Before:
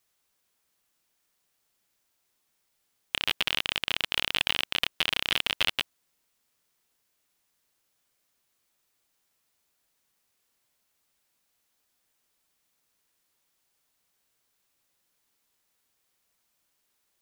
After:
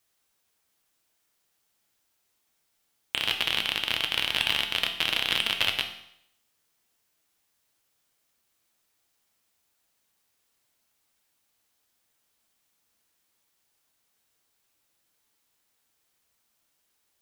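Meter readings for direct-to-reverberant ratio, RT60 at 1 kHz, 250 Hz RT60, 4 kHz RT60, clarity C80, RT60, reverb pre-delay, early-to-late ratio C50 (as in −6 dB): 4.5 dB, 0.70 s, 0.70 s, 0.70 s, 12.0 dB, 0.70 s, 4 ms, 9.0 dB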